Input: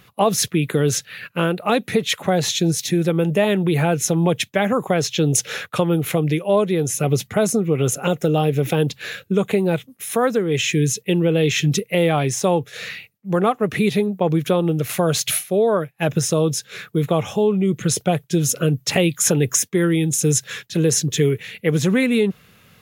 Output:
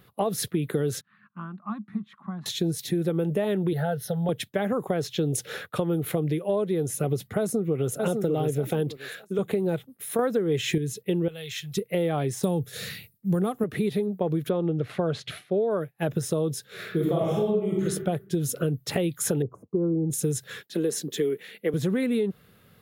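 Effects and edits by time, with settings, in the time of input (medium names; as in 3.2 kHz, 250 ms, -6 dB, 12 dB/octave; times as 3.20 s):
1.01–2.46 s: two resonant band-passes 480 Hz, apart 2.4 oct
3.73–4.29 s: static phaser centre 1.6 kHz, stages 8
7.39–8.04 s: echo throw 600 ms, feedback 25%, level -5.5 dB
8.97–9.39 s: high-pass 450 Hz 6 dB/octave
10.19–10.78 s: gain +7.5 dB
11.28–11.77 s: amplifier tone stack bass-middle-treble 10-0-10
12.43–13.64 s: tone controls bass +12 dB, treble +14 dB
14.49–15.71 s: low-pass 3.5 kHz
16.74–17.84 s: reverb throw, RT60 0.8 s, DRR -5.5 dB
19.42–20.10 s: elliptic low-pass 1.1 kHz
20.61–21.74 s: high-pass 210 Hz 24 dB/octave
whole clip: fifteen-band graphic EQ 400 Hz +3 dB, 1 kHz -3 dB, 2.5 kHz -8 dB, 6.3 kHz -10 dB; compression, threshold -17 dBFS; trim -4.5 dB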